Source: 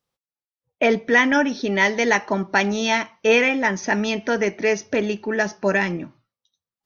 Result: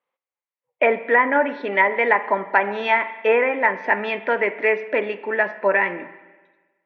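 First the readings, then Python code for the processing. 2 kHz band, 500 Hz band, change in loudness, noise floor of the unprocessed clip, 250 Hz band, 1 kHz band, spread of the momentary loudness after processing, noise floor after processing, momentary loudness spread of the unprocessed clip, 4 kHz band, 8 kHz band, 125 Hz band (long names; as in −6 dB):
+0.5 dB, +1.0 dB, 0.0 dB, below −85 dBFS, −8.5 dB, +4.0 dB, 6 LU, below −85 dBFS, 7 LU, −9.0 dB, can't be measured, below −10 dB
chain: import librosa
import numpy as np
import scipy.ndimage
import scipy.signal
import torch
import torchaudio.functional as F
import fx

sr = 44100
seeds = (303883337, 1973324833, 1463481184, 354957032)

y = fx.cabinet(x, sr, low_hz=400.0, low_slope=12, high_hz=2900.0, hz=(540.0, 1000.0, 2100.0), db=(5, 7, 7))
y = fx.env_lowpass_down(y, sr, base_hz=1300.0, full_db=-10.5)
y = fx.rev_spring(y, sr, rt60_s=1.3, pass_ms=(39, 46), chirp_ms=45, drr_db=13.5)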